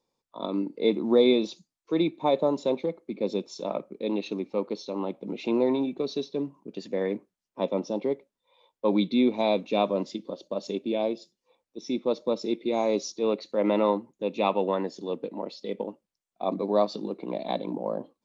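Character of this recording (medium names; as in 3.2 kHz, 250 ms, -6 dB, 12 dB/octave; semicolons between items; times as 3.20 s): noise floor -89 dBFS; spectral tilt -4.5 dB/octave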